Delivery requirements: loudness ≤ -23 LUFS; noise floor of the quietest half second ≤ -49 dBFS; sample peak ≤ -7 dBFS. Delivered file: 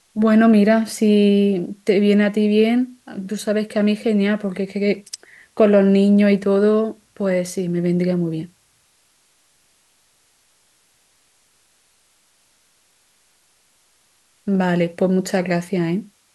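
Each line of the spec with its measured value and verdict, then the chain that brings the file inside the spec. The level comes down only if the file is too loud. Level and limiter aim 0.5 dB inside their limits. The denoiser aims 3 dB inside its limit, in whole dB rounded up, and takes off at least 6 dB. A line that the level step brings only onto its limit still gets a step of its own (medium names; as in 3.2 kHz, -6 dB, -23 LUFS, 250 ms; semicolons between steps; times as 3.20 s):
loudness -18.0 LUFS: fail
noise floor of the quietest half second -60 dBFS: pass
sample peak -3.5 dBFS: fail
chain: trim -5.5 dB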